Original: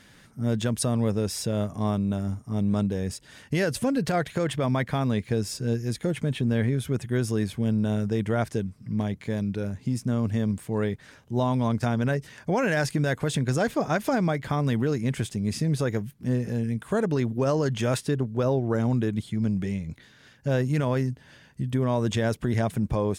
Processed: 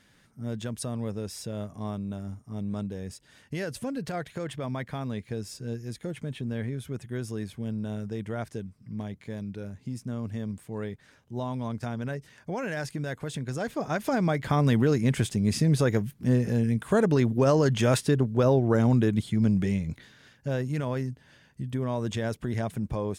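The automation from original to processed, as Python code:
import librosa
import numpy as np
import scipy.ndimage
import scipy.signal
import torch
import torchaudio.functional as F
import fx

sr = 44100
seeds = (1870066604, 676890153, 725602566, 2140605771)

y = fx.gain(x, sr, db=fx.line((13.52, -8.0), (14.59, 2.5), (19.91, 2.5), (20.55, -5.0)))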